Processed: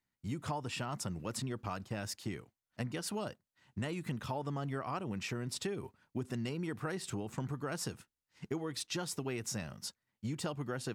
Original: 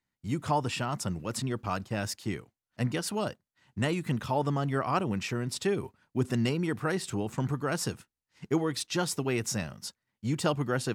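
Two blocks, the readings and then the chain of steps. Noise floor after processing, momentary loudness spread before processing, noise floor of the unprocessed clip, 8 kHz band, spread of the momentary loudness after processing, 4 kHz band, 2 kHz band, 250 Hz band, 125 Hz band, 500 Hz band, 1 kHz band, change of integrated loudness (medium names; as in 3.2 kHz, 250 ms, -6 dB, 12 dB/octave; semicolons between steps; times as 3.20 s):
under -85 dBFS, 7 LU, under -85 dBFS, -6.0 dB, 6 LU, -6.0 dB, -8.0 dB, -8.5 dB, -8.0 dB, -9.0 dB, -9.5 dB, -8.0 dB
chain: compression, threshold -32 dBFS, peak gain reduction 10 dB; trim -2.5 dB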